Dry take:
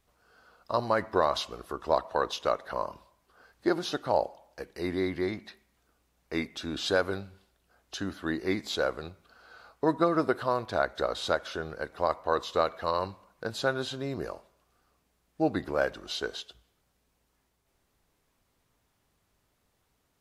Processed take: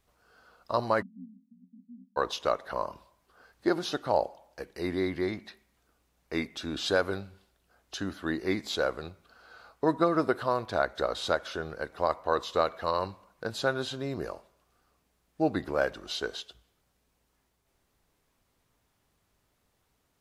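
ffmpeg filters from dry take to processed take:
ffmpeg -i in.wav -filter_complex "[0:a]asplit=3[link_01][link_02][link_03];[link_01]afade=type=out:start_time=1.01:duration=0.02[link_04];[link_02]asuperpass=centerf=220:order=20:qfactor=2.6,afade=type=in:start_time=1.01:duration=0.02,afade=type=out:start_time=2.16:duration=0.02[link_05];[link_03]afade=type=in:start_time=2.16:duration=0.02[link_06];[link_04][link_05][link_06]amix=inputs=3:normalize=0" out.wav

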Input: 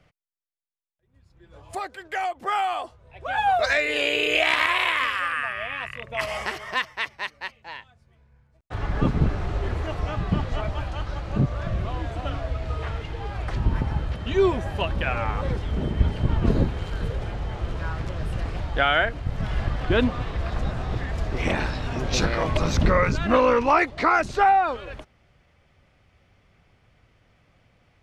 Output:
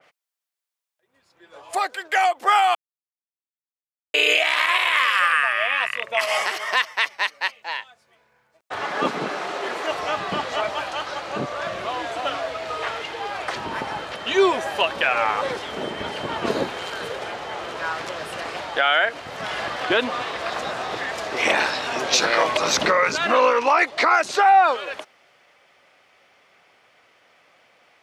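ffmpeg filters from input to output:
ffmpeg -i in.wav -filter_complex "[0:a]asettb=1/sr,asplit=3[link_01][link_02][link_03];[link_01]atrim=end=8.834[link_04];[link_02]atrim=start=8.83:end=9.91,asetpts=PTS-STARTPTS,afade=type=in:duration=0.004:curve=qsin,afade=type=out:start_time=1.076:duration=0.004:curve=qsin,highpass=frequency=150:width=0.5412,highpass=frequency=150:width=1.3066[link_05];[link_03]atrim=start=9.906[link_06];[link_04][link_05]acrossfade=duration=0.004:curve1=hsin:curve2=qsin[link_07];[link_07][link_06]acrossfade=duration=0.004:curve1=qsin:curve2=hsin,asplit=3[link_08][link_09][link_10];[link_08]atrim=end=2.75,asetpts=PTS-STARTPTS,afade=type=out:start_time=2.746:duration=0.004:curve=hsin[link_11];[link_09]atrim=start=2.75:end=4.14,asetpts=PTS-STARTPTS,volume=0[link_12];[link_10]atrim=start=4.14,asetpts=PTS-STARTPTS,afade=type=in:duration=0.004:curve=hsin[link_13];[link_11][link_12][link_13]concat=n=3:v=0:a=1,highpass=530,alimiter=limit=-17dB:level=0:latency=1:release=138,adynamicequalizer=threshold=0.00794:dfrequency=2900:dqfactor=0.7:tfrequency=2900:tqfactor=0.7:attack=5:release=100:ratio=0.375:range=1.5:mode=boostabove:tftype=highshelf,volume=9dB" out.wav

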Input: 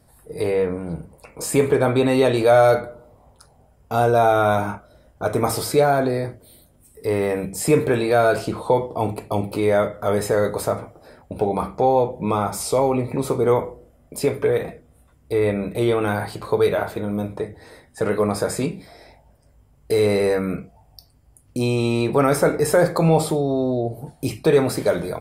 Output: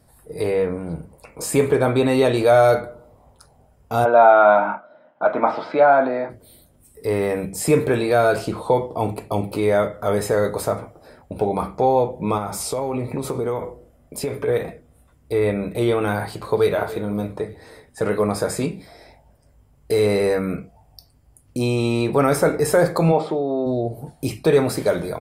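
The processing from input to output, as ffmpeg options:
ffmpeg -i in.wav -filter_complex "[0:a]asplit=3[link_01][link_02][link_03];[link_01]afade=type=out:start_time=4.04:duration=0.02[link_04];[link_02]highpass=frequency=210:width=0.5412,highpass=frequency=210:width=1.3066,equalizer=frequency=410:width_type=q:width=4:gain=-10,equalizer=frequency=620:width_type=q:width=4:gain=7,equalizer=frequency=900:width_type=q:width=4:gain=7,equalizer=frequency=1400:width_type=q:width=4:gain=6,lowpass=frequency=3100:width=0.5412,lowpass=frequency=3100:width=1.3066,afade=type=in:start_time=4.04:duration=0.02,afade=type=out:start_time=6.29:duration=0.02[link_05];[link_03]afade=type=in:start_time=6.29:duration=0.02[link_06];[link_04][link_05][link_06]amix=inputs=3:normalize=0,asettb=1/sr,asplit=3[link_07][link_08][link_09];[link_07]atrim=end=12.374[link_10];[link_08]atrim=start=12.37:end=14.48,asetpts=PTS-STARTPTS,afade=type=in:duration=0.004:curve=qsin,afade=type=out:start_time=2.106:duration=0.004:curve=qsin,acompressor=threshold=-20dB:ratio=6:attack=3.2:release=140:knee=1:detection=peak[link_11];[link_09]atrim=start=14.476[link_12];[link_10][link_11]acrossfade=duration=0.004:curve1=hsin:curve2=qsin[link_13];[link_13][link_12]acrossfade=duration=0.004:curve1=qsin:curve2=hsin,asplit=2[link_14][link_15];[link_15]afade=type=in:start_time=16.26:duration=0.01,afade=type=out:start_time=16.73:duration=0.01,aecho=0:1:290|580|870|1160:0.177828|0.0800226|0.0360102|0.0162046[link_16];[link_14][link_16]amix=inputs=2:normalize=0,asplit=3[link_17][link_18][link_19];[link_17]afade=type=out:start_time=23.11:duration=0.02[link_20];[link_18]highpass=250,lowpass=2600,afade=type=in:start_time=23.11:duration=0.02,afade=type=out:start_time=23.65:duration=0.02[link_21];[link_19]afade=type=in:start_time=23.65:duration=0.02[link_22];[link_20][link_21][link_22]amix=inputs=3:normalize=0" out.wav

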